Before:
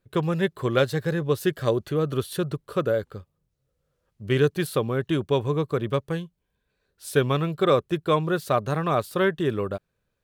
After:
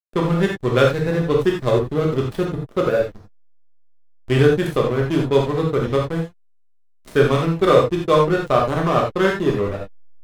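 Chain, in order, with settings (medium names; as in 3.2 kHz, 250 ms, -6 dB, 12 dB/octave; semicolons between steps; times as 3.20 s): reverse; upward compressor, threshold -34 dBFS; reverse; hysteresis with a dead band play -24.5 dBFS; gated-style reverb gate 110 ms flat, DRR -1.5 dB; trim +3.5 dB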